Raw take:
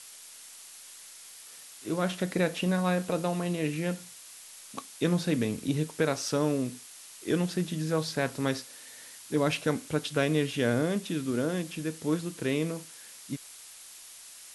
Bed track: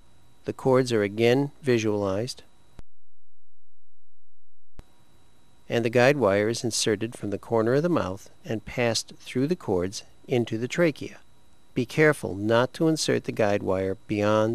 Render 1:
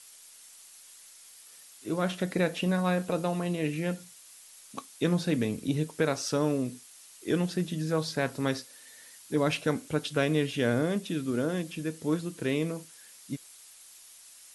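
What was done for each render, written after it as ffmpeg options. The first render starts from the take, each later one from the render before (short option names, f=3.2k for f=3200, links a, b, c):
-af "afftdn=nr=6:nf=-49"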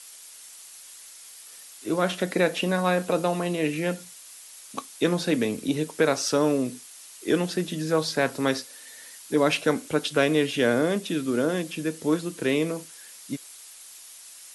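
-filter_complex "[0:a]acrossover=split=220[a][b];[a]alimiter=level_in=10dB:limit=-24dB:level=0:latency=1:release=278,volume=-10dB[c];[b]acontrast=61[d];[c][d]amix=inputs=2:normalize=0"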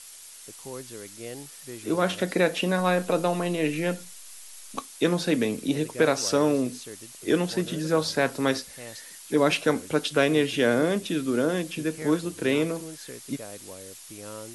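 -filter_complex "[1:a]volume=-18.5dB[a];[0:a][a]amix=inputs=2:normalize=0"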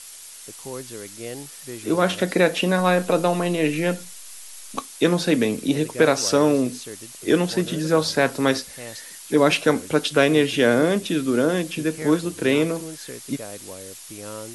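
-af "volume=4.5dB"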